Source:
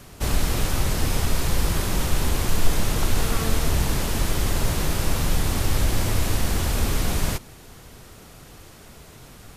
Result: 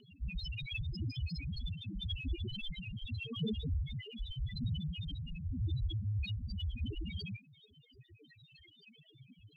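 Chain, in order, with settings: frequency weighting D; loudest bins only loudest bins 1; phaser 0.86 Hz, delay 1.6 ms, feedback 56%; rotary cabinet horn 6.3 Hz, later 0.8 Hz, at 1.65 s; trim +1.5 dB

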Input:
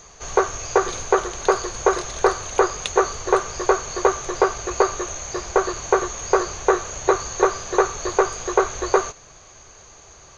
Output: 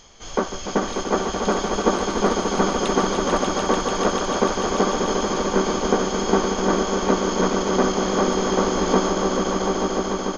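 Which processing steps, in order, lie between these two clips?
echo with a slow build-up 147 ms, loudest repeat 5, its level -6.5 dB; harmony voices -12 st -2 dB, -7 st -10 dB, -4 st -6 dB; trim -6.5 dB

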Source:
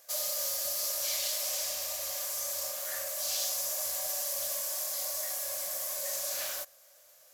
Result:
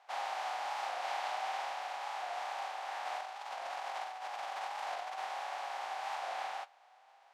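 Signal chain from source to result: spectral contrast reduction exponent 0.16; low-pass 2.5 kHz 12 dB/octave; flange 0.54 Hz, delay 6.9 ms, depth 2.2 ms, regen +49%; resonant high-pass 780 Hz, resonance Q 9.4; 3.05–5.18 s: compressor with a negative ratio -43 dBFS, ratio -0.5; warped record 45 rpm, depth 100 cents; trim +2.5 dB

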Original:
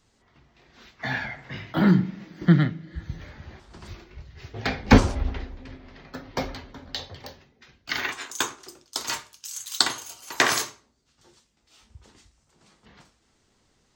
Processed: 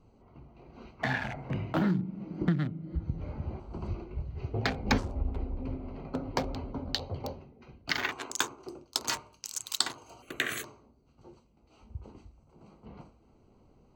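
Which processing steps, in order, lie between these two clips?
local Wiener filter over 25 samples; compression 4:1, threshold -36 dBFS, peak gain reduction 22.5 dB; 10.22–10.64 s: static phaser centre 2.2 kHz, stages 4; trim +7.5 dB

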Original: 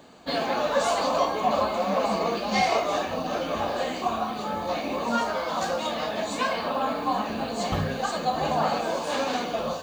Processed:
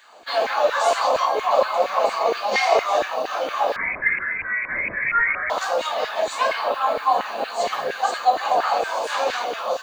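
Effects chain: LFO high-pass saw down 4.3 Hz 410–1900 Hz; 3.76–5.50 s: frequency inversion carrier 2.8 kHz; trim +2 dB

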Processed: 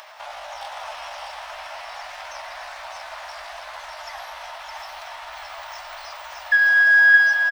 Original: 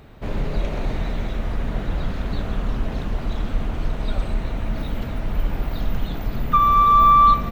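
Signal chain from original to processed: elliptic high-pass 450 Hz, stop band 40 dB; upward compressor, threshold -34 dBFS; pitch shift +6 st; delay 615 ms -4 dB

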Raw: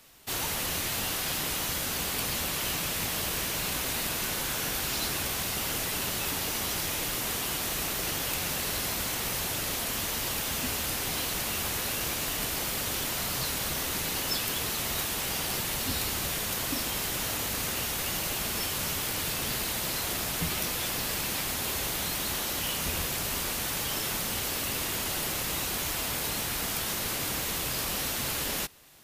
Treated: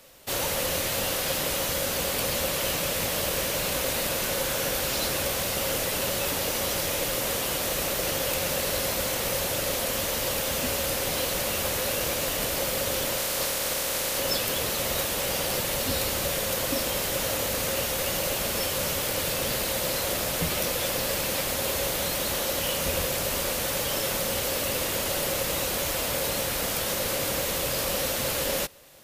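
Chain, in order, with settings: 13.17–14.17 s: spectral peaks clipped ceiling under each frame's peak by 14 dB; peaking EQ 540 Hz +14 dB 0.33 oct; trim +2.5 dB

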